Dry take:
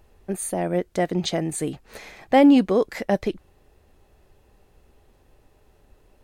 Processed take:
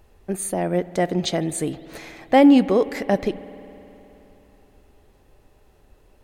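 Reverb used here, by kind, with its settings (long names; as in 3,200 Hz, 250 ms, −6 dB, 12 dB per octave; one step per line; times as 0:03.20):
spring reverb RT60 3.5 s, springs 52 ms, chirp 30 ms, DRR 16 dB
level +1.5 dB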